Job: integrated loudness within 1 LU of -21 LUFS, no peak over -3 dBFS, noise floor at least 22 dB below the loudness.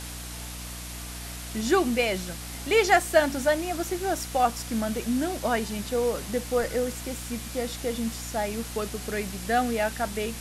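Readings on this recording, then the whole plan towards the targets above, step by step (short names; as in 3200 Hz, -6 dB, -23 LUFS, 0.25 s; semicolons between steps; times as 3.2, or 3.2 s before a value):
hum 60 Hz; harmonics up to 300 Hz; hum level -38 dBFS; noise floor -38 dBFS; noise floor target -50 dBFS; loudness -27.5 LUFS; peak -6.5 dBFS; loudness target -21.0 LUFS
-> de-hum 60 Hz, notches 5; denoiser 12 dB, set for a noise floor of -38 dBFS; gain +6.5 dB; limiter -3 dBFS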